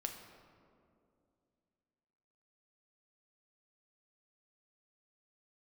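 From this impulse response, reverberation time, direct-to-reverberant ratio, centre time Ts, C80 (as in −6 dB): 2.5 s, 3.5 dB, 41 ms, 7.5 dB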